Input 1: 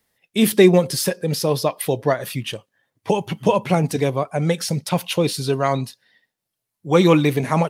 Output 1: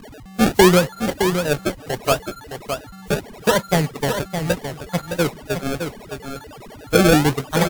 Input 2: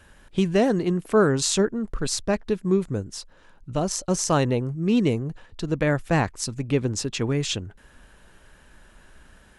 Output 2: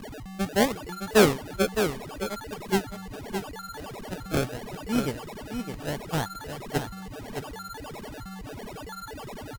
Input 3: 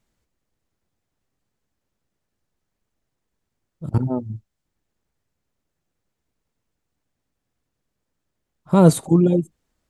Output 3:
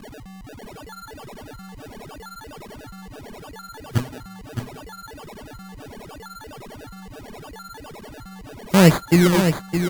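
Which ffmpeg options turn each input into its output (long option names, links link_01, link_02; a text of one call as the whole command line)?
ffmpeg -i in.wav -af "aeval=exprs='val(0)+0.5*0.0944*sgn(val(0))':channel_layout=same,agate=range=-32dB:threshold=-15dB:ratio=16:detection=peak,aeval=exprs='val(0)+0.0158*sin(2*PI*6900*n/s)':channel_layout=same,acrusher=samples=31:mix=1:aa=0.000001:lfo=1:lforange=31:lforate=0.75,aecho=1:1:614:0.422,volume=-1dB" -ar 48000 -c:a wmav2 -b:a 128k out.wma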